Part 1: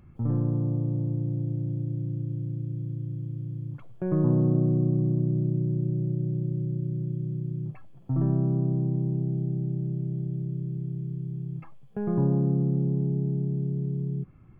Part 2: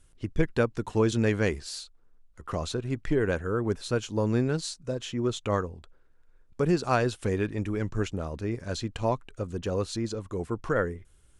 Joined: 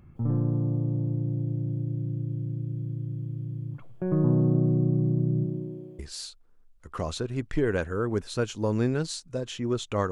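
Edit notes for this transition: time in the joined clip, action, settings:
part 1
5.44–5.99 s: high-pass 150 Hz -> 670 Hz
5.99 s: go over to part 2 from 1.53 s

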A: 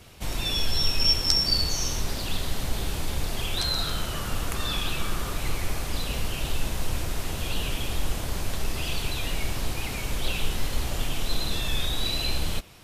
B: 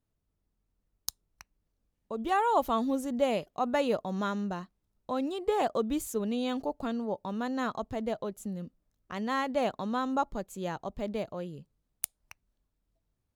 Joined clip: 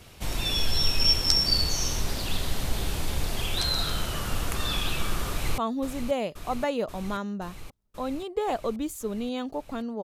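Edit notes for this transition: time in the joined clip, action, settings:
A
5.29–5.58 s: echo throw 530 ms, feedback 80%, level -9 dB
5.58 s: go over to B from 2.69 s

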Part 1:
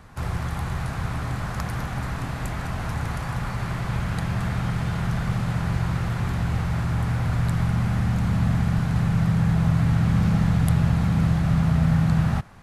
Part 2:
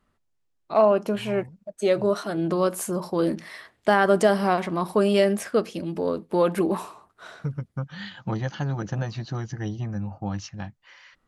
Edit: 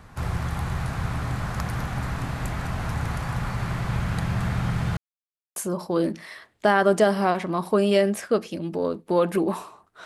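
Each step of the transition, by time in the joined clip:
part 1
4.97–5.56 s: mute
5.56 s: go over to part 2 from 2.79 s

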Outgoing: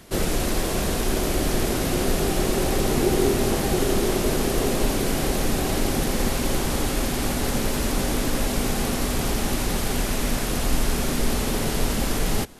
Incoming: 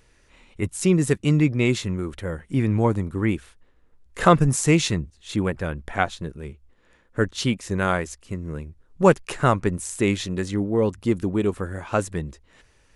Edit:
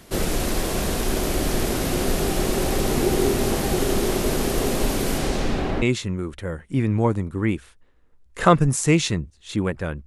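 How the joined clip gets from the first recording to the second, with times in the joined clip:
outgoing
5.17–5.82 s: low-pass 11 kHz -> 1.8 kHz
5.82 s: go over to incoming from 1.62 s

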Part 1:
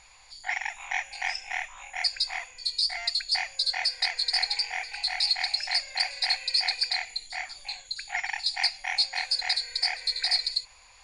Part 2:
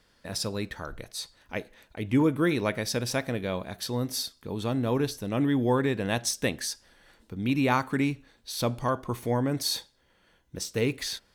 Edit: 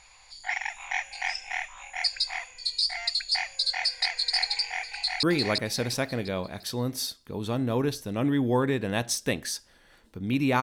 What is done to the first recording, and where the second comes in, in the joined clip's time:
part 1
4.95–5.23 s: echo throw 350 ms, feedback 40%, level -2 dB
5.23 s: go over to part 2 from 2.39 s

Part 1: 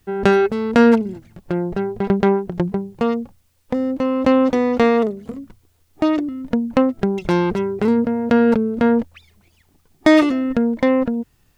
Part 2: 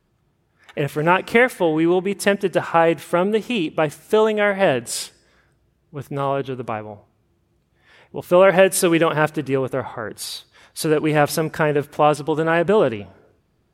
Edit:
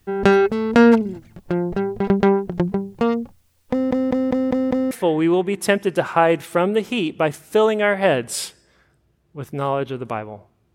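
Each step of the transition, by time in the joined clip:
part 1
3.71 s: stutter in place 0.20 s, 6 plays
4.91 s: go over to part 2 from 1.49 s

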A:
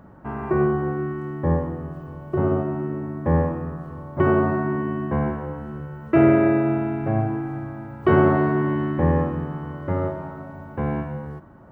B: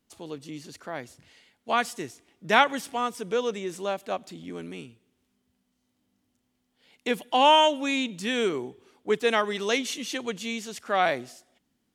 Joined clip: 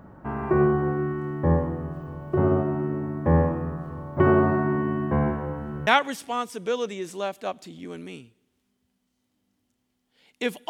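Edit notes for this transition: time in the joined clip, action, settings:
A
5.87 s: go over to B from 2.52 s

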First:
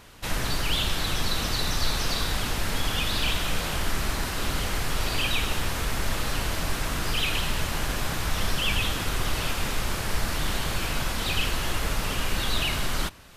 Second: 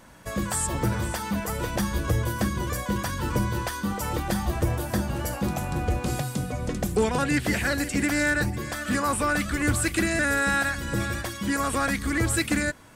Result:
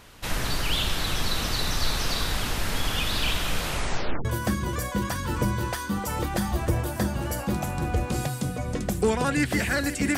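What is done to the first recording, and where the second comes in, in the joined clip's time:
first
3.67 s: tape stop 0.58 s
4.25 s: go over to second from 2.19 s

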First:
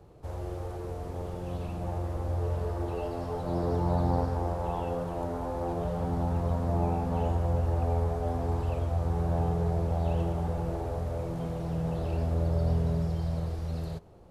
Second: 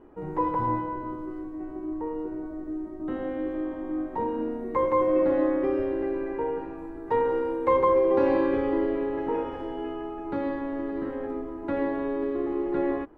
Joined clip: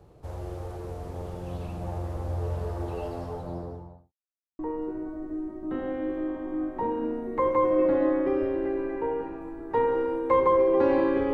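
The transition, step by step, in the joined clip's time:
first
3.05–4.13 s: studio fade out
4.13–4.59 s: mute
4.59 s: go over to second from 1.96 s

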